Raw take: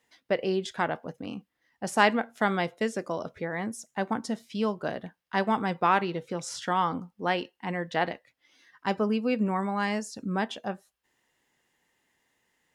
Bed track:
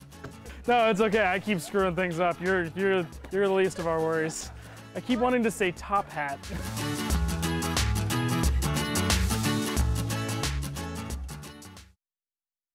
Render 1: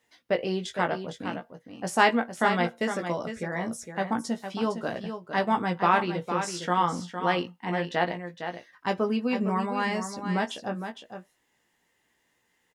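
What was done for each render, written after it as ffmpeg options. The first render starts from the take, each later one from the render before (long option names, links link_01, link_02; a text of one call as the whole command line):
ffmpeg -i in.wav -filter_complex "[0:a]asplit=2[link_01][link_02];[link_02]adelay=17,volume=-6dB[link_03];[link_01][link_03]amix=inputs=2:normalize=0,asplit=2[link_04][link_05];[link_05]aecho=0:1:459:0.376[link_06];[link_04][link_06]amix=inputs=2:normalize=0" out.wav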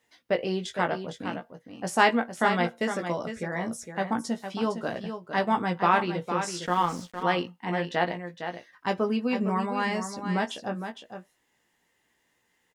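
ffmpeg -i in.wav -filter_complex "[0:a]asettb=1/sr,asplit=3[link_01][link_02][link_03];[link_01]atrim=end=6.664[link_04];[link_02]atrim=start=6.66:end=7.23,asetpts=PTS-STARTPTS,afade=type=in:duration=0.004:curve=qsin,afade=type=out:start_time=0.566:duration=0.004:curve=qsin,aeval=exprs='sgn(val(0))*max(abs(val(0))-0.00708,0)':channel_layout=same[link_05];[link_03]atrim=start=7.226[link_06];[link_04][link_05]acrossfade=duration=0.004:curve1=hsin:curve2=qsin[link_07];[link_07][link_06]acrossfade=duration=0.004:curve1=qsin:curve2=hsin" out.wav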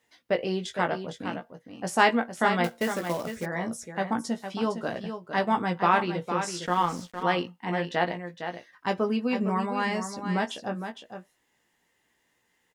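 ffmpeg -i in.wav -filter_complex "[0:a]asettb=1/sr,asplit=3[link_01][link_02][link_03];[link_01]atrim=end=2.644[link_04];[link_02]atrim=start=2.64:end=3.46,asetpts=PTS-STARTPTS,afade=type=in:duration=0.004:curve=qsin,afade=type=out:start_time=0.816:duration=0.004:curve=qsin,acrusher=bits=3:mode=log:mix=0:aa=0.000001[link_05];[link_03]atrim=start=3.456[link_06];[link_04][link_05]acrossfade=duration=0.004:curve1=hsin:curve2=qsin[link_07];[link_07][link_06]acrossfade=duration=0.004:curve1=qsin:curve2=hsin" out.wav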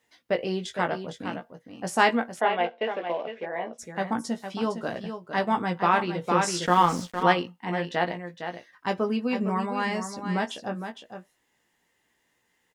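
ffmpeg -i in.wav -filter_complex "[0:a]asplit=3[link_01][link_02][link_03];[link_01]afade=type=out:start_time=2.39:duration=0.02[link_04];[link_02]highpass=410,equalizer=frequency=450:width_type=q:width=4:gain=4,equalizer=frequency=710:width_type=q:width=4:gain=5,equalizer=frequency=1300:width_type=q:width=4:gain=-8,equalizer=frequency=1900:width_type=q:width=4:gain=-3,equalizer=frequency=2800:width_type=q:width=4:gain=5,lowpass=frequency=3000:width=0.5412,lowpass=frequency=3000:width=1.3066,afade=type=in:start_time=2.39:duration=0.02,afade=type=out:start_time=3.78:duration=0.02[link_05];[link_03]afade=type=in:start_time=3.78:duration=0.02[link_06];[link_04][link_05][link_06]amix=inputs=3:normalize=0,asplit=3[link_07][link_08][link_09];[link_07]afade=type=out:start_time=6.23:duration=0.02[link_10];[link_08]acontrast=36,afade=type=in:start_time=6.23:duration=0.02,afade=type=out:start_time=7.32:duration=0.02[link_11];[link_09]afade=type=in:start_time=7.32:duration=0.02[link_12];[link_10][link_11][link_12]amix=inputs=3:normalize=0" out.wav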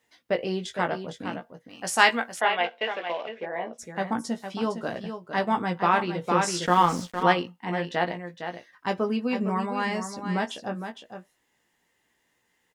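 ffmpeg -i in.wav -filter_complex "[0:a]asettb=1/sr,asplit=3[link_01][link_02][link_03];[link_01]atrim=end=1.694[link_04];[link_02]atrim=start=1.69:end=3.29,asetpts=PTS-STARTPTS,afade=type=in:duration=0.004:curve=qsin,afade=type=out:start_time=1.596:duration=0.004:curve=qsin,tiltshelf=frequency=840:gain=-7[link_05];[link_03]atrim=start=3.286[link_06];[link_04][link_05]acrossfade=duration=0.004:curve1=hsin:curve2=qsin[link_07];[link_07][link_06]acrossfade=duration=0.004:curve1=qsin:curve2=hsin" out.wav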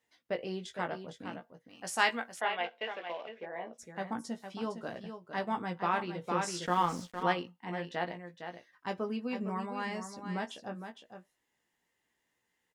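ffmpeg -i in.wav -af "volume=-9dB" out.wav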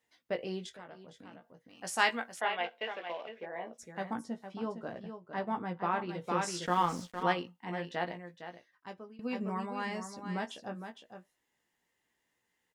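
ffmpeg -i in.wav -filter_complex "[0:a]asettb=1/sr,asplit=3[link_01][link_02][link_03];[link_01]atrim=end=0.694[link_04];[link_02]atrim=start=0.69:end=1.82,asetpts=PTS-STARTPTS,afade=type=in:duration=0.004:curve=qsin,afade=type=out:start_time=1.126:duration=0.004:curve=qsin,acompressor=threshold=-52dB:ratio=2.5:attack=3.2:release=140:knee=1:detection=peak[link_05];[link_03]atrim=start=1.816[link_06];[link_04][link_05]acrossfade=duration=0.004:curve1=hsin:curve2=qsin[link_07];[link_07][link_06]acrossfade=duration=0.004:curve1=qsin:curve2=hsin,asettb=1/sr,asplit=3[link_08][link_09][link_10];[link_08]atrim=end=4.244[link_11];[link_09]atrim=start=4.24:end=6.09,asetpts=PTS-STARTPTS,afade=type=in:duration=0.004:curve=qsin,afade=type=out:start_time=1.846:duration=0.004:curve=qsin,highshelf=frequency=2700:gain=-11[link_12];[link_10]atrim=start=6.086[link_13];[link_11][link_12]acrossfade=duration=0.004:curve1=hsin:curve2=qsin[link_14];[link_14][link_13]acrossfade=duration=0.004:curve1=qsin:curve2=hsin,asplit=2[link_15][link_16];[link_15]atrim=end=9.19,asetpts=PTS-STARTPTS,afade=type=out:start_time=8.19:duration=1:silence=0.0794328[link_17];[link_16]atrim=start=9.19,asetpts=PTS-STARTPTS,afade=type=in:duration=0.004:curve=hsin:silence=0.0794328[link_18];[link_17][link_18]concat=n=2:v=0:a=1" out.wav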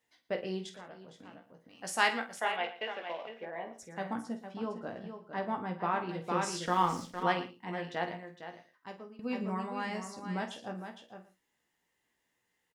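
ffmpeg -i in.wav -filter_complex "[0:a]asplit=2[link_01][link_02];[link_02]adelay=48,volume=-11dB[link_03];[link_01][link_03]amix=inputs=2:normalize=0,aecho=1:1:115:0.158" out.wav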